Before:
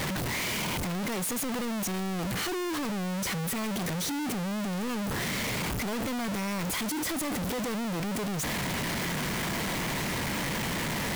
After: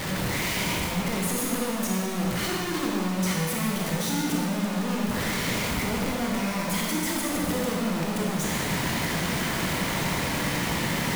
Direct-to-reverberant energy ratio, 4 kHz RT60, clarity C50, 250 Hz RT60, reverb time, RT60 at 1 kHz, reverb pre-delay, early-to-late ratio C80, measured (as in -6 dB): -3.0 dB, 1.8 s, -1.0 dB, 2.0 s, 2.0 s, 2.0 s, 22 ms, 1.0 dB